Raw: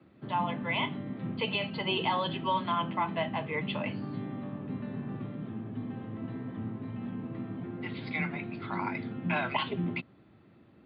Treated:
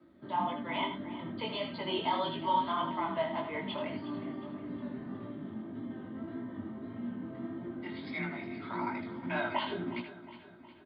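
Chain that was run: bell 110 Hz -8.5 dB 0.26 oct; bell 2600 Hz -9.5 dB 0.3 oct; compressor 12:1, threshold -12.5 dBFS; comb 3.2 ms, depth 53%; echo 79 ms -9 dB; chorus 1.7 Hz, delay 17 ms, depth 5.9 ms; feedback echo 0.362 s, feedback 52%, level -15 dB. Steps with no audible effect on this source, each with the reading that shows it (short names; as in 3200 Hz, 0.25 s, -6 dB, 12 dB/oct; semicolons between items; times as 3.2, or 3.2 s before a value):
compressor, threshold -12.5 dBFS: input peak -17.5 dBFS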